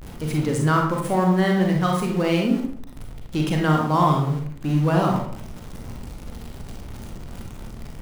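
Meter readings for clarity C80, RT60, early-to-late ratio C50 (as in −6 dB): 7.5 dB, 0.65 s, 3.0 dB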